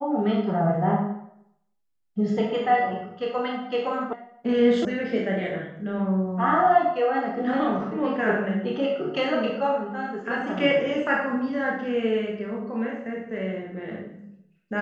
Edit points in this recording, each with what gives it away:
0:04.13: cut off before it has died away
0:04.85: cut off before it has died away

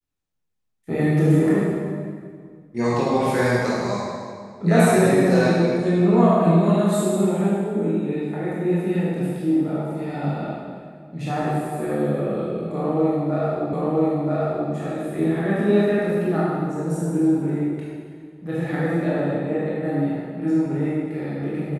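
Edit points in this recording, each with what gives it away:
0:13.73: the same again, the last 0.98 s

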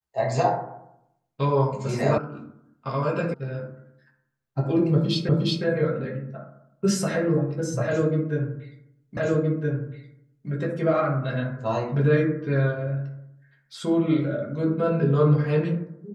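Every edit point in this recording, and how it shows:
0:02.18: cut off before it has died away
0:03.34: cut off before it has died away
0:05.29: the same again, the last 0.36 s
0:09.17: the same again, the last 1.32 s

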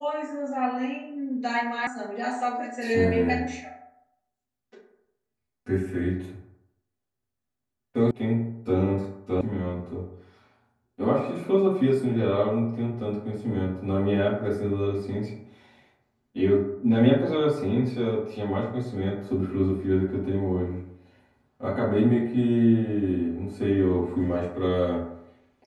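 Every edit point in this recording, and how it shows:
0:01.87: cut off before it has died away
0:08.11: cut off before it has died away
0:09.41: cut off before it has died away

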